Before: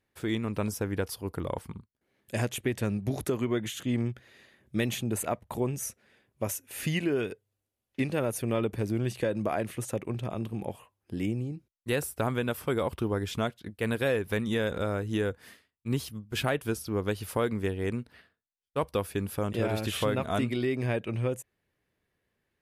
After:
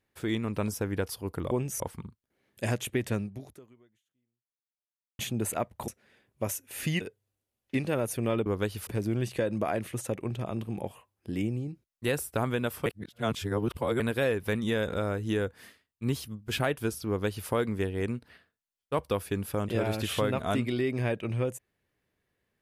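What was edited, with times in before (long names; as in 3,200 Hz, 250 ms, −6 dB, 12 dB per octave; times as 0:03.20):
0:02.86–0:04.90: fade out exponential
0:05.59–0:05.88: move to 0:01.51
0:07.01–0:07.26: remove
0:12.70–0:13.84: reverse
0:16.92–0:17.33: duplicate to 0:08.71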